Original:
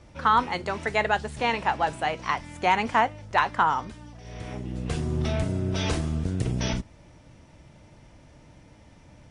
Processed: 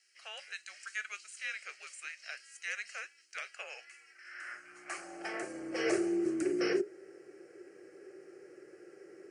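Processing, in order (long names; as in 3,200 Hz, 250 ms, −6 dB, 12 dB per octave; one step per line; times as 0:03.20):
frequency shifter −420 Hz
phaser with its sweep stopped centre 970 Hz, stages 6
high-pass filter sweep 3,500 Hz → 380 Hz, 0:03.42–0:06.00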